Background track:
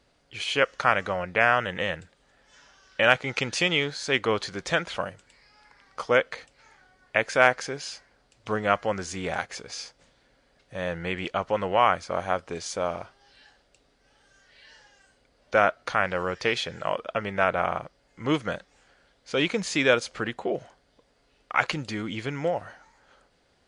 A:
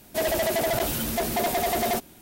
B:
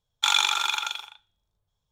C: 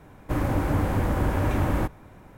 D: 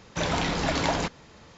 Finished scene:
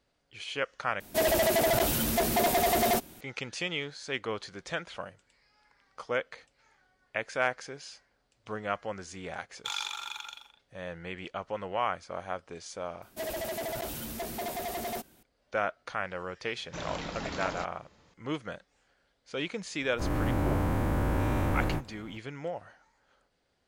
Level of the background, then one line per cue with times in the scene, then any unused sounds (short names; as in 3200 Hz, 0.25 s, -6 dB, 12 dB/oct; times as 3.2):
background track -9.5 dB
1 replace with A -0.5 dB
9.42 add B -13.5 dB
13.02 add A -10.5 dB
16.57 add D -11.5 dB
19.81 add C -9.5 dB + spectral dilation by 0.24 s